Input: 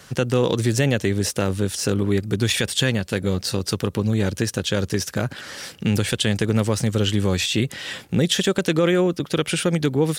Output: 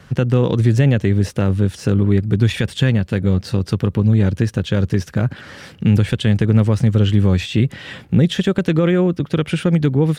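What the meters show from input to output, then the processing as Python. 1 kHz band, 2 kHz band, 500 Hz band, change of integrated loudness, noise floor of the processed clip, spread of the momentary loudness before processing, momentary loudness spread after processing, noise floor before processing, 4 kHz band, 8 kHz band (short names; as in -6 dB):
0.0 dB, -1.0 dB, +1.0 dB, +4.5 dB, -43 dBFS, 5 LU, 6 LU, -46 dBFS, -4.5 dB, under -10 dB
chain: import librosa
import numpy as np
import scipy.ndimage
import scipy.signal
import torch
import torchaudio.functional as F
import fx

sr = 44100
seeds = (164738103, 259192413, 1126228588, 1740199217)

y = fx.bass_treble(x, sr, bass_db=9, treble_db=-12)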